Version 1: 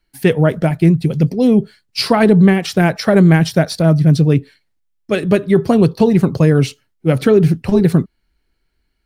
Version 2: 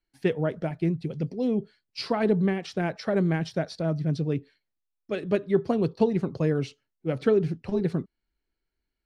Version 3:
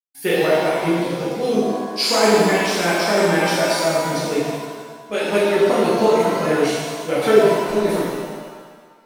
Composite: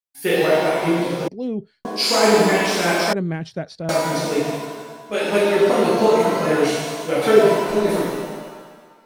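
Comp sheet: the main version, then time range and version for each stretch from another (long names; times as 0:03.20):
3
0:01.28–0:01.85: punch in from 2
0:03.13–0:03.89: punch in from 2
not used: 1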